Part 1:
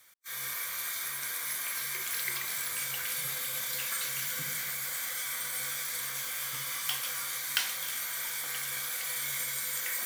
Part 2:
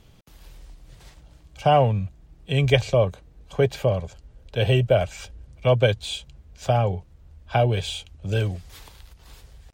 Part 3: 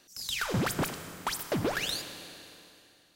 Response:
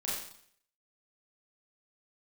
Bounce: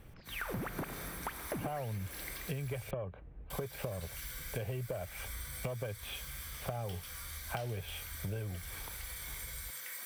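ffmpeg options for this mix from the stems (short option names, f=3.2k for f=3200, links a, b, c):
-filter_complex "[0:a]bandreject=f=6.8k:w=8.8,volume=-10.5dB,asplit=3[a][b][c];[a]atrim=end=2.91,asetpts=PTS-STARTPTS,afade=t=out:st=2.906:d=0.004:c=hsin[d];[b]atrim=start=2.91:end=3.5,asetpts=PTS-STARTPTS,volume=0[e];[c]atrim=start=3.5,asetpts=PTS-STARTPTS,afade=t=in:d=0.004:c=hsin[f];[d][e][f]concat=n=3:v=0:a=1[g];[1:a]asoftclip=type=tanh:threshold=-10.5dB,volume=-1.5dB[h];[2:a]volume=-2dB[i];[h][i]amix=inputs=2:normalize=0,lowpass=f=2.4k:w=0.5412,lowpass=f=2.4k:w=1.3066,acompressor=threshold=-26dB:ratio=6,volume=0dB[j];[g][j]amix=inputs=2:normalize=0,acompressor=threshold=-36dB:ratio=6"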